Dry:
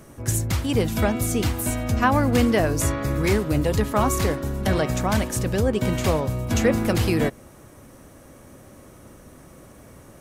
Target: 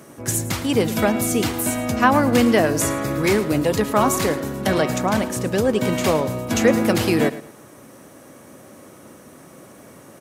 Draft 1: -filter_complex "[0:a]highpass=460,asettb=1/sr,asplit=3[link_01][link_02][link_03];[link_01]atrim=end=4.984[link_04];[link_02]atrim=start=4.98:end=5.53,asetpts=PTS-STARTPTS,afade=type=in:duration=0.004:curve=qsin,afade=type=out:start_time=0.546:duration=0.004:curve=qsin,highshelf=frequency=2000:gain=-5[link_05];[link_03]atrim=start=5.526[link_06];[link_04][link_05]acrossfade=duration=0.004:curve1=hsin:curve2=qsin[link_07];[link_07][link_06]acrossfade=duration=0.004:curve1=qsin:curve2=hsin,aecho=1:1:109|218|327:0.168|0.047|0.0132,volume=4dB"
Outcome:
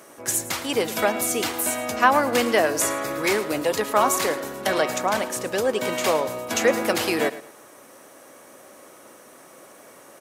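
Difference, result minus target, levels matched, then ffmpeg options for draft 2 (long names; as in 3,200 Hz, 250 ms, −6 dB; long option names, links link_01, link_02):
125 Hz band −12.5 dB
-filter_complex "[0:a]highpass=170,asettb=1/sr,asplit=3[link_01][link_02][link_03];[link_01]atrim=end=4.984[link_04];[link_02]atrim=start=4.98:end=5.53,asetpts=PTS-STARTPTS,afade=type=in:duration=0.004:curve=qsin,afade=type=out:start_time=0.546:duration=0.004:curve=qsin,highshelf=frequency=2000:gain=-5[link_05];[link_03]atrim=start=5.526[link_06];[link_04][link_05]acrossfade=duration=0.004:curve1=hsin:curve2=qsin[link_07];[link_07][link_06]acrossfade=duration=0.004:curve1=qsin:curve2=hsin,aecho=1:1:109|218|327:0.168|0.047|0.0132,volume=4dB"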